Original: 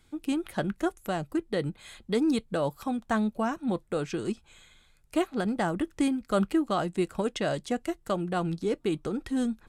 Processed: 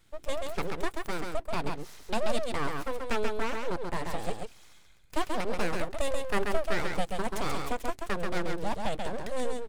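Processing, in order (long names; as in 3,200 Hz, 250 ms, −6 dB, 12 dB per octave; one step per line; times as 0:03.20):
full-wave rectification
single-tap delay 134 ms −4 dB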